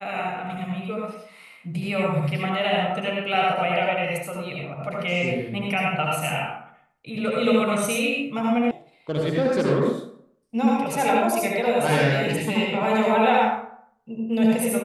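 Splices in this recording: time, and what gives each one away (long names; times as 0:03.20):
0:08.71: cut off before it has died away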